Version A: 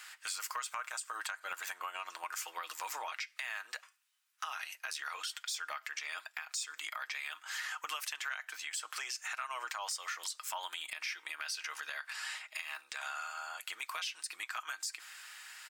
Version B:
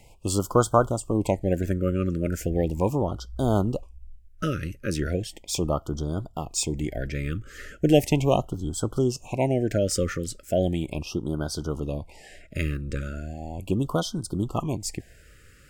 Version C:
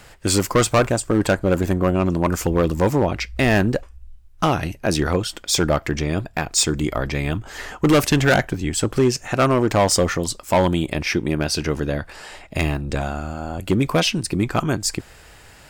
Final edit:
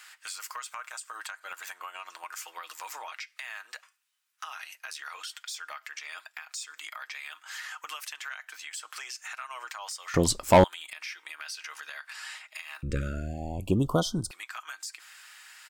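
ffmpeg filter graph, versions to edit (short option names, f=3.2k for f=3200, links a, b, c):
-filter_complex "[0:a]asplit=3[a][b][c];[a]atrim=end=10.142[d];[2:a]atrim=start=10.138:end=10.642[e];[b]atrim=start=10.638:end=12.832[f];[1:a]atrim=start=12.828:end=14.312[g];[c]atrim=start=14.308[h];[d][e]acrossfade=d=0.004:c1=hsin:c2=hsin[i];[i][f]acrossfade=d=0.004:c1=hsin:c2=hsin[j];[j][g]acrossfade=d=0.004:c1=hsin:c2=hsin[k];[k][h]acrossfade=d=0.004:c1=hsin:c2=hsin"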